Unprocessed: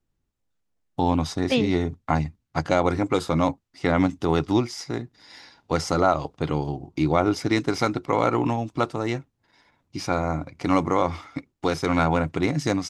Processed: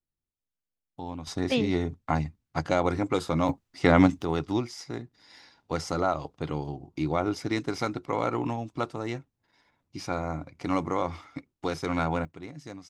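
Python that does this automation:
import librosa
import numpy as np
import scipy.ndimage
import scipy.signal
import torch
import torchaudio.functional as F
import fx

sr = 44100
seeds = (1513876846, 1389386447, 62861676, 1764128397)

y = fx.gain(x, sr, db=fx.steps((0.0, -15.5), (1.27, -4.0), (3.49, 2.0), (4.22, -6.5), (12.25, -18.5)))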